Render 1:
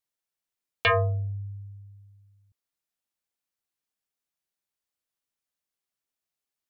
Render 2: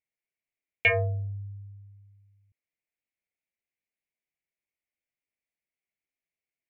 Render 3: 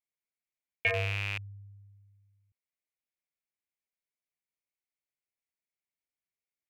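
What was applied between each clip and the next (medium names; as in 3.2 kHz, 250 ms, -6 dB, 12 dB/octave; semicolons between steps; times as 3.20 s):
FFT filter 670 Hz 0 dB, 1.2 kHz -17 dB, 2.2 kHz +10 dB, 3.7 kHz -13 dB; trim -2.5 dB
rattle on loud lows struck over -33 dBFS, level -15 dBFS; trim -6 dB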